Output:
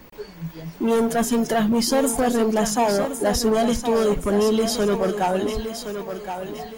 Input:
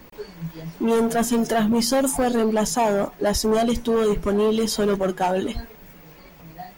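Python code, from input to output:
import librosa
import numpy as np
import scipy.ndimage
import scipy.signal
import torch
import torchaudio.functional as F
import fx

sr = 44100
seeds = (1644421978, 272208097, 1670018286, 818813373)

y = fx.quant_companded(x, sr, bits=8, at=(0.63, 1.37))
y = fx.echo_thinned(y, sr, ms=1069, feedback_pct=40, hz=200.0, wet_db=-8)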